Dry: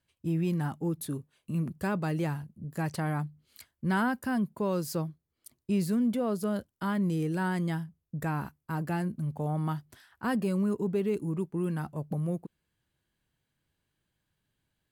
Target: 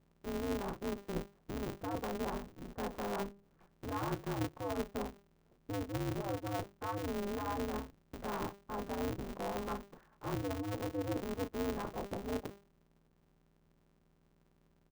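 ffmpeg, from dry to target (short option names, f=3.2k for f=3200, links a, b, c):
-filter_complex "[0:a]lowpass=f=1.1k:w=0.5412,lowpass=f=1.1k:w=1.3066,bandreject=f=50:t=h:w=6,bandreject=f=100:t=h:w=6,bandreject=f=150:t=h:w=6,bandreject=f=200:t=h:w=6,bandreject=f=250:t=h:w=6,bandreject=f=300:t=h:w=6,aecho=1:1:3.1:0.74,areverse,acompressor=threshold=-37dB:ratio=6,areverse,aeval=exprs='val(0)+0.000316*(sin(2*PI*60*n/s)+sin(2*PI*2*60*n/s)/2+sin(2*PI*3*60*n/s)/3+sin(2*PI*4*60*n/s)/4+sin(2*PI*5*60*n/s)/5)':c=same,asplit=2[a][b];[b]aecho=0:1:23|37:0.316|0.335[c];[a][c]amix=inputs=2:normalize=0,aeval=exprs='val(0)*sgn(sin(2*PI*100*n/s))':c=same,volume=1dB"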